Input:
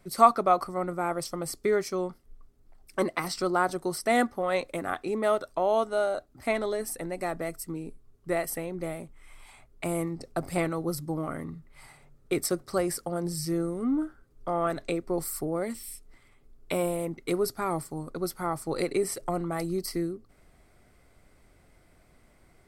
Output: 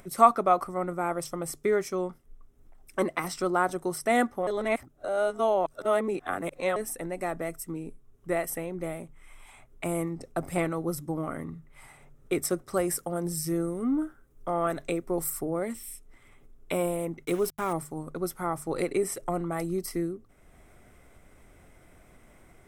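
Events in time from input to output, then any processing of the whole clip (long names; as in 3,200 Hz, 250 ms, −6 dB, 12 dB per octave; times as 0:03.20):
0:04.47–0:06.76: reverse
0:12.74–0:15.30: high-shelf EQ 9,300 Hz +7.5 dB
0:17.25–0:17.73: centre clipping without the shift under −38 dBFS
whole clip: parametric band 4,500 Hz −13.5 dB 0.25 octaves; mains-hum notches 50/100/150 Hz; upward compression, threshold −47 dBFS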